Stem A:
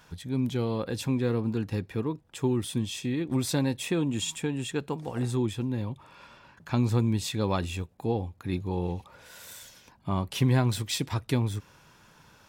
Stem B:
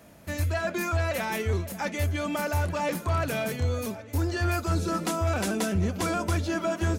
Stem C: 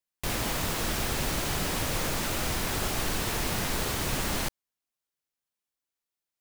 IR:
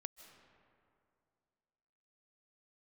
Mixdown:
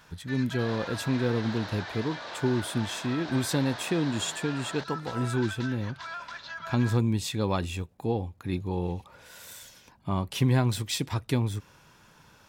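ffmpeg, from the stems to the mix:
-filter_complex "[0:a]volume=1[s0];[1:a]highpass=f=1100:w=0.5412,highpass=f=1100:w=1.3066,volume=0.531[s1];[2:a]adelay=350,volume=0.562[s2];[s1][s2]amix=inputs=2:normalize=0,highpass=350,equalizer=f=650:t=q:w=4:g=8,equalizer=f=950:t=q:w=4:g=7,equalizer=f=1600:t=q:w=4:g=9,equalizer=f=2500:t=q:w=4:g=-4,equalizer=f=3900:t=q:w=4:g=7,lowpass=f=5100:w=0.5412,lowpass=f=5100:w=1.3066,alimiter=level_in=2.24:limit=0.0631:level=0:latency=1,volume=0.447,volume=1[s3];[s0][s3]amix=inputs=2:normalize=0"

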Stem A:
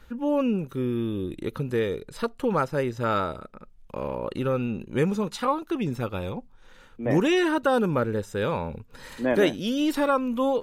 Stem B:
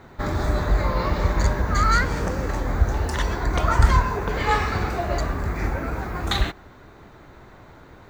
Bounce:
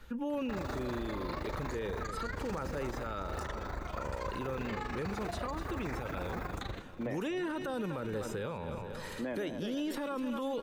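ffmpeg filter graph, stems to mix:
-filter_complex "[0:a]volume=0.841,asplit=3[s0][s1][s2];[s1]volume=0.188[s3];[1:a]acompressor=threshold=0.0631:ratio=6,tremolo=f=25:d=0.857,adelay=300,volume=1.26[s4];[s2]apad=whole_len=370050[s5];[s4][s5]sidechaingate=range=0.398:threshold=0.00891:ratio=16:detection=peak[s6];[s3]aecho=0:1:243|486|729|972|1215|1458|1701|1944:1|0.56|0.314|0.176|0.0983|0.0551|0.0308|0.0173[s7];[s0][s6][s7]amix=inputs=3:normalize=0,acrossover=split=370|1900[s8][s9][s10];[s8]acompressor=threshold=0.0178:ratio=4[s11];[s9]acompressor=threshold=0.02:ratio=4[s12];[s10]acompressor=threshold=0.00562:ratio=4[s13];[s11][s12][s13]amix=inputs=3:normalize=0,alimiter=level_in=1.68:limit=0.0631:level=0:latency=1:release=20,volume=0.596"

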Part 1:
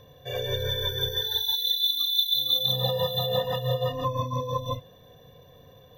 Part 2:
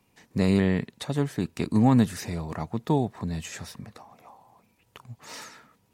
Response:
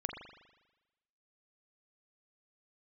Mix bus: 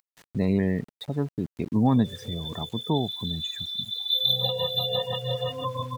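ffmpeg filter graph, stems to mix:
-filter_complex "[0:a]highpass=f=92:p=1,equalizer=f=3100:w=3.7:g=11.5,adelay=1600,volume=0.708,afade=t=in:st=3.97:d=0.32:silence=0.266073,asplit=2[s0][s1];[s1]volume=0.0841[s2];[1:a]agate=range=0.398:threshold=0.00224:ratio=16:detection=peak,volume=0.841[s3];[2:a]atrim=start_sample=2205[s4];[s2][s4]afir=irnorm=-1:irlink=0[s5];[s0][s3][s5]amix=inputs=3:normalize=0,afftdn=nr=21:nf=-34,acompressor=mode=upward:threshold=0.0355:ratio=2.5,aeval=exprs='val(0)*gte(abs(val(0)),0.00531)':c=same"

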